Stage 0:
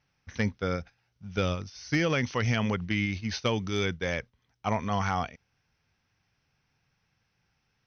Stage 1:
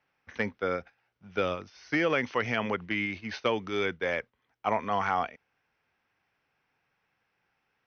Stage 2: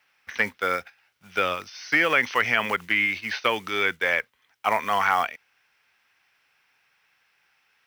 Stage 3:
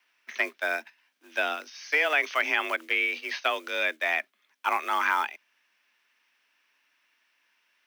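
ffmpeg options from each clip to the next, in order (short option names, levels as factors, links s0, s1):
-filter_complex "[0:a]acrossover=split=270 3100:gain=0.158 1 0.158[s0][s1][s2];[s0][s1][s2]amix=inputs=3:normalize=0,volume=1.33"
-filter_complex "[0:a]acrusher=bits=7:mode=log:mix=0:aa=0.000001,tiltshelf=f=970:g=-9.5,acrossover=split=2700[s0][s1];[s1]acompressor=threshold=0.00794:ratio=4:attack=1:release=60[s2];[s0][s2]amix=inputs=2:normalize=0,volume=2"
-af "afreqshift=150,volume=0.668"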